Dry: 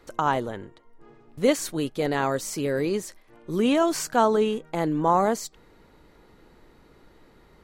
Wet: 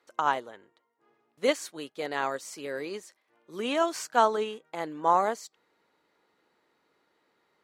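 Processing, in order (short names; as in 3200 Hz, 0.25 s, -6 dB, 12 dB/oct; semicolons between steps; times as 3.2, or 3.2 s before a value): weighting filter A; upward expander 1.5:1, over -42 dBFS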